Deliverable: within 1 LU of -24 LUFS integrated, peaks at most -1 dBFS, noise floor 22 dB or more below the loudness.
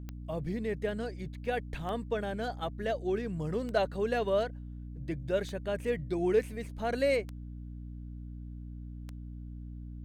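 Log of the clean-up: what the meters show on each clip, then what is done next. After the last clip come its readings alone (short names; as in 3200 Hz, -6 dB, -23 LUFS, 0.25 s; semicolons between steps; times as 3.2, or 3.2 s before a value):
clicks 6; hum 60 Hz; harmonics up to 300 Hz; hum level -40 dBFS; loudness -33.0 LUFS; peak -15.5 dBFS; loudness target -24.0 LUFS
-> de-click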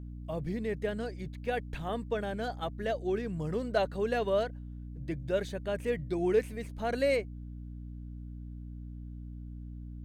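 clicks 0; hum 60 Hz; harmonics up to 300 Hz; hum level -40 dBFS
-> de-hum 60 Hz, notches 5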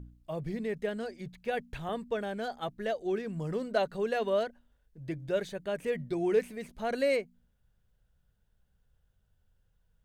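hum none; loudness -33.5 LUFS; peak -16.0 dBFS; loudness target -24.0 LUFS
-> gain +9.5 dB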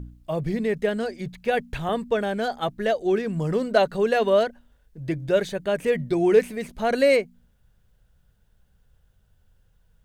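loudness -24.0 LUFS; peak -6.5 dBFS; noise floor -63 dBFS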